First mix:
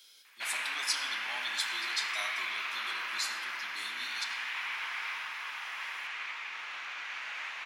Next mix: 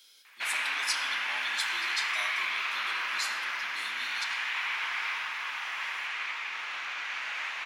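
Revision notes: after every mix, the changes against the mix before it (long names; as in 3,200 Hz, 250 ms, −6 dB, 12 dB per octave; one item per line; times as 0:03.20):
background +4.5 dB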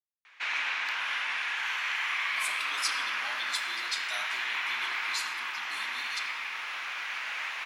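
speech: entry +1.95 s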